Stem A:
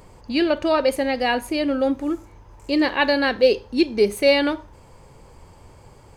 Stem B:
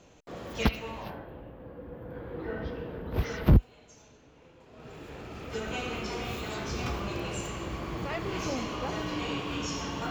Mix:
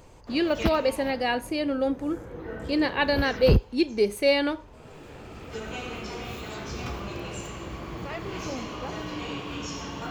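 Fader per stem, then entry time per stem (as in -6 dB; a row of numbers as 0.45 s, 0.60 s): -5.0 dB, -1.0 dB; 0.00 s, 0.00 s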